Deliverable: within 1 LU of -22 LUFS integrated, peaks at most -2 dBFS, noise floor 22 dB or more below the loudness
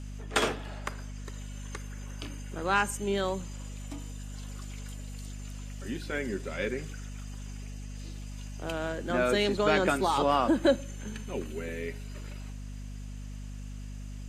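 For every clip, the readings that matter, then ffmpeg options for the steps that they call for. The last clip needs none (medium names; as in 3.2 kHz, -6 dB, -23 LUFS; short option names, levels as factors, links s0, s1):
hum 50 Hz; highest harmonic 250 Hz; hum level -37 dBFS; loudness -31.5 LUFS; peak level -9.0 dBFS; loudness target -22.0 LUFS
-> -af "bandreject=f=50:t=h:w=6,bandreject=f=100:t=h:w=6,bandreject=f=150:t=h:w=6,bandreject=f=200:t=h:w=6,bandreject=f=250:t=h:w=6"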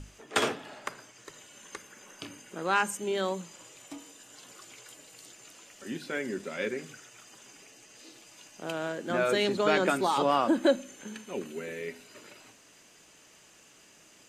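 hum not found; loudness -30.0 LUFS; peak level -9.0 dBFS; loudness target -22.0 LUFS
-> -af "volume=2.51,alimiter=limit=0.794:level=0:latency=1"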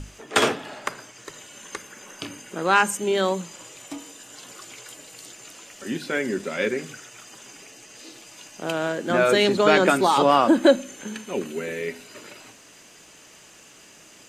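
loudness -22.0 LUFS; peak level -2.0 dBFS; noise floor -50 dBFS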